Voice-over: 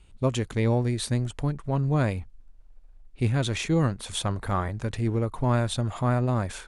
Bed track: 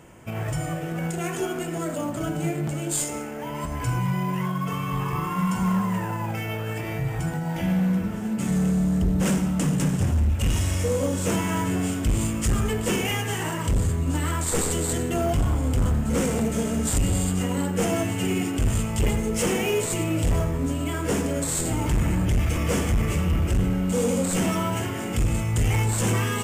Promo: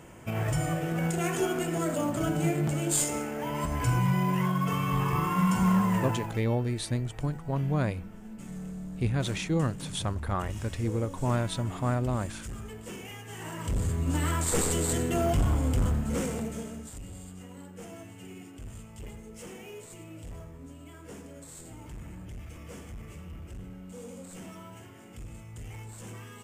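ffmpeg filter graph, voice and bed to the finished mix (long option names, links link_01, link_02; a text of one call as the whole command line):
ffmpeg -i stem1.wav -i stem2.wav -filter_complex "[0:a]adelay=5800,volume=-4dB[link_01];[1:a]volume=14dB,afade=type=out:start_time=5.99:duration=0.45:silence=0.149624,afade=type=in:start_time=13.25:duration=0.97:silence=0.188365,afade=type=out:start_time=15.6:duration=1.31:silence=0.125893[link_02];[link_01][link_02]amix=inputs=2:normalize=0" out.wav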